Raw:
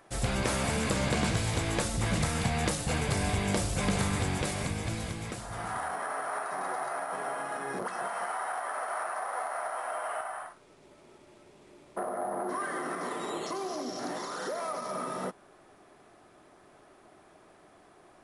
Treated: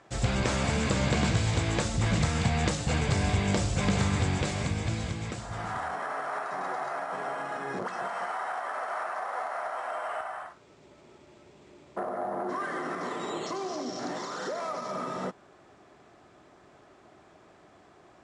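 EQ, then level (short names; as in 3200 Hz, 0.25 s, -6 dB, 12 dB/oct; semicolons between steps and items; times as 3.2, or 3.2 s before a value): HPF 72 Hz; elliptic low-pass 7700 Hz, stop band 80 dB; low shelf 100 Hz +10.5 dB; +1.5 dB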